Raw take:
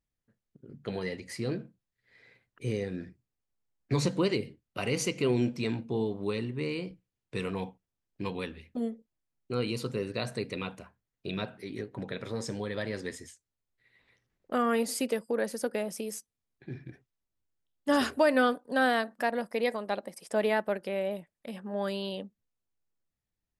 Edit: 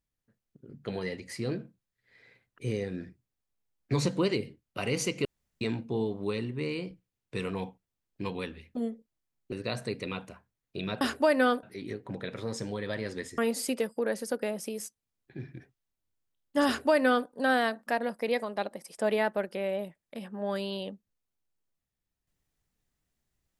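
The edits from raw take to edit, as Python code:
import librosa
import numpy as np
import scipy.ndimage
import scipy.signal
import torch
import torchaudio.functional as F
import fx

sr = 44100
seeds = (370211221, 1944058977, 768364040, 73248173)

y = fx.edit(x, sr, fx.room_tone_fill(start_s=5.25, length_s=0.36),
    fx.cut(start_s=9.52, length_s=0.5),
    fx.cut(start_s=13.26, length_s=1.44),
    fx.duplicate(start_s=17.98, length_s=0.62, to_s=11.51), tone=tone)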